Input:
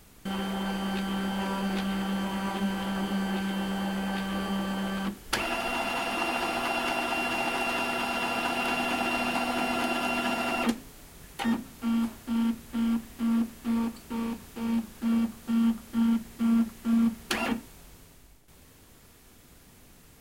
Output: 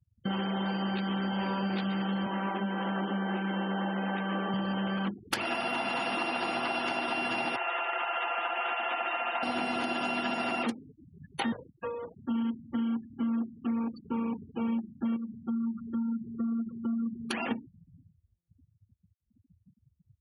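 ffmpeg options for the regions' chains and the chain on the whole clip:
-filter_complex "[0:a]asettb=1/sr,asplit=3[s0][s1][s2];[s0]atrim=end=2.264[s3];[s1]atrim=start=2.26:end=4.54,asetpts=PTS-STARTPTS,afade=t=in:d=0.004:c=qsin,afade=t=out:st=2.276:d=0.004:c=qsin,highpass=200,acrossover=split=3000[s4][s5];[s5]acompressor=threshold=0.00178:ratio=4:attack=1:release=60[s6];[s4][s6]amix=inputs=2:normalize=0[s7];[s2]atrim=start=4.536[s8];[s3][s7]acrossfade=d=0.004:c1=hsin:c2=qsin[s9];[s9][s8]acrossfade=d=0.004:c1=qsin:c2=hsin,asettb=1/sr,asplit=3[s10][s11][s12];[s10]atrim=end=7.564[s13];[s11]atrim=start=7.56:end=9.43,asetpts=PTS-STARTPTS,afade=t=in:d=0.004:c=qsin,afade=t=out:st=1.866:d=0.004:c=qsin,highpass=750,lowpass=2500,aecho=1:1:5.7:0.48,atrim=end_sample=82467[s14];[s12]atrim=start=9.426[s15];[s13][s14]acrossfade=d=0.004:c1=hsin:c2=qsin[s16];[s16][s15]acrossfade=d=0.004:c1=qsin:c2=hsin,asettb=1/sr,asplit=3[s17][s18][s19];[s17]atrim=end=11.524[s20];[s18]atrim=start=11.52:end=12.17,asetpts=PTS-STARTPTS,afade=t=in:d=0.004:c=qsin,afade=t=out:st=0.646:d=0.004:c=qsin,acompressor=threshold=0.0316:ratio=2:attack=3.2:release=140:knee=1:detection=peak,aeval=exprs='abs(val(0))':c=same,afreqshift=17[s21];[s19]atrim=start=12.166[s22];[s20][s21]acrossfade=d=0.004:c1=hsin:c2=qsin[s23];[s23][s22]acrossfade=d=0.004:c1=qsin:c2=hsin,asettb=1/sr,asplit=3[s24][s25][s26];[s24]atrim=end=15.164[s27];[s25]atrim=start=15.16:end=17.51,asetpts=PTS-STARTPTS,afade=t=in:d=0.004:c=qsin,afade=t=out:st=2.346:d=0.004:c=qsin,acompressor=threshold=0.0158:ratio=2.5:attack=3.2:release=140:knee=1:detection=peak,aecho=1:1:309:0.282,atrim=end_sample=103635[s28];[s26]atrim=start=17.506[s29];[s27][s28]acrossfade=d=0.004:c1=hsin:c2=qsin[s30];[s30][s29]acrossfade=d=0.004:c1=qsin:c2=hsin,afftfilt=real='re*gte(hypot(re,im),0.0126)':imag='im*gte(hypot(re,im),0.0126)':win_size=1024:overlap=0.75,acompressor=threshold=0.02:ratio=6,highpass=f=95:w=0.5412,highpass=f=95:w=1.3066,volume=1.88"

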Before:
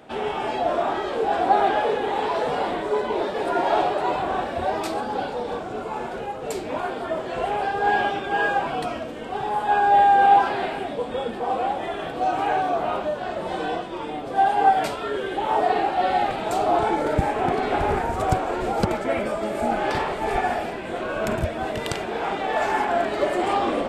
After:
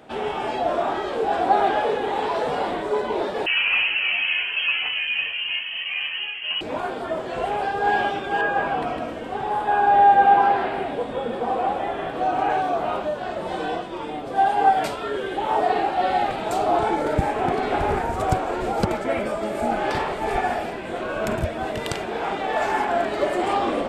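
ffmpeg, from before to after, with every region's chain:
-filter_complex "[0:a]asettb=1/sr,asplit=3[s0][s1][s2];[s0]atrim=end=3.464[s3];[s1]atrim=start=3.46:end=6.61,asetpts=PTS-STARTPTS,afade=t=in:d=0.004:c=qsin,afade=t=out:st=3.146:d=0.004:c=qsin,asplit=2[s4][s5];[s5]adelay=13,volume=0.708[s6];[s4][s6]amix=inputs=2:normalize=0,atrim=end_sample=138915,asoftclip=type=hard:threshold=0.15,lowpass=f=2800:t=q:w=0.5098,lowpass=f=2800:t=q:w=0.6013,lowpass=f=2800:t=q:w=0.9,lowpass=f=2800:t=q:w=2.563,afreqshift=-3300[s7];[s2]atrim=start=6.606[s8];[s3][s7]acrossfade=d=0.004:c1=hsin:c2=qsin[s9];[s9][s8]acrossfade=d=0.004:c1=qsin:c2=hsin,asettb=1/sr,asplit=3[s10][s11][s12];[s10]atrim=end=8.414[s13];[s11]atrim=start=8.41:end=12.5,asetpts=PTS-STARTPTS,afade=t=in:d=0.004:c=qsin,afade=t=out:st=4.086:d=0.004:c=qsin,acrossover=split=2800[s14][s15];[s15]acompressor=threshold=0.00316:ratio=4:attack=1:release=60[s16];[s14][s16]amix=inputs=2:normalize=0,aecho=1:1:156:0.562,atrim=end_sample=180369[s17];[s12]atrim=start=12.496[s18];[s13][s17]acrossfade=d=0.004:c1=hsin:c2=qsin[s19];[s19][s18]acrossfade=d=0.004:c1=qsin:c2=hsin"

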